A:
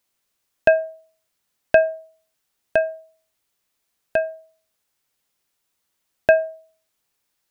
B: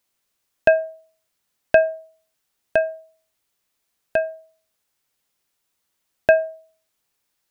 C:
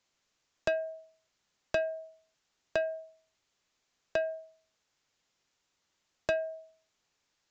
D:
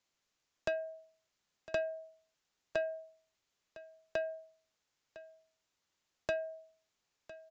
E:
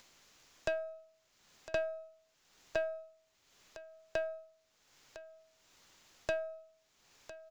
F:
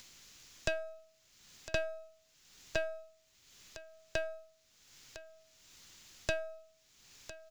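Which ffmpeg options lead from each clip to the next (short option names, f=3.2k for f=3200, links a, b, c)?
-af anull
-filter_complex "[0:a]acrossover=split=190|3000[a][b][c];[b]acompressor=threshold=-24dB:ratio=8[d];[a][d][c]amix=inputs=3:normalize=0,aresample=16000,asoftclip=type=tanh:threshold=-21dB,aresample=44100"
-af "aecho=1:1:1006:0.141,volume=-5dB"
-af "aeval=exprs='if(lt(val(0),0),0.708*val(0),val(0))':c=same,acompressor=mode=upward:threshold=-49dB:ratio=2.5,volume=1.5dB"
-af "equalizer=f=720:t=o:w=2.8:g=-11,volume=9dB"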